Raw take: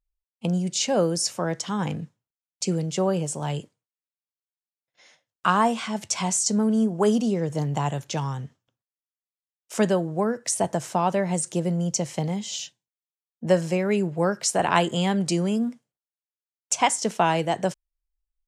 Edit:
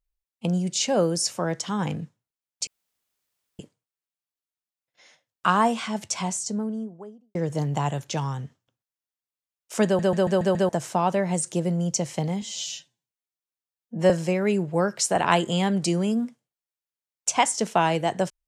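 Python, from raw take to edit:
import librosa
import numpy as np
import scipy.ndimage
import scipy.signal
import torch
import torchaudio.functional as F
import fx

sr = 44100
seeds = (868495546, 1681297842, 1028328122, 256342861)

y = fx.studio_fade_out(x, sr, start_s=5.87, length_s=1.48)
y = fx.edit(y, sr, fx.room_tone_fill(start_s=2.67, length_s=0.92),
    fx.stutter_over(start_s=9.85, slice_s=0.14, count=6),
    fx.stretch_span(start_s=12.42, length_s=1.12, factor=1.5), tone=tone)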